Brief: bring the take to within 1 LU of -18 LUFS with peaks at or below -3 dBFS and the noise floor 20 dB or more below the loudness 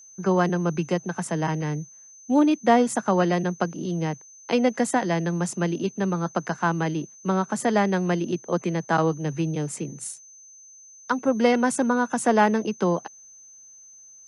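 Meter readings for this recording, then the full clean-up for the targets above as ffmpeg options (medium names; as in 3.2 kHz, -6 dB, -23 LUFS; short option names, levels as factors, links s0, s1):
steady tone 6.2 kHz; tone level -46 dBFS; loudness -24.0 LUFS; peak level -6.5 dBFS; loudness target -18.0 LUFS
-> -af "bandreject=f=6200:w=30"
-af "volume=2,alimiter=limit=0.708:level=0:latency=1"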